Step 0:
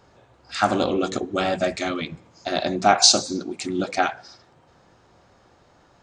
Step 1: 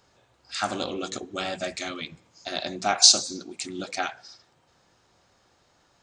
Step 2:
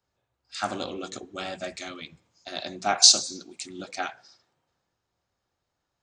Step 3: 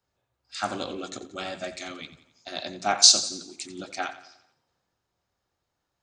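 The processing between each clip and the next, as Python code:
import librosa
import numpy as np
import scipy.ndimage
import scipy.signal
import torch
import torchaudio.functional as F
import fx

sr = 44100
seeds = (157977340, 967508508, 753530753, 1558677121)

y1 = fx.high_shelf(x, sr, hz=2200.0, db=11.5)
y1 = y1 * librosa.db_to_amplitude(-10.0)
y2 = fx.band_widen(y1, sr, depth_pct=40)
y2 = y2 * librosa.db_to_amplitude(-3.5)
y3 = fx.echo_feedback(y2, sr, ms=88, feedback_pct=49, wet_db=-15.0)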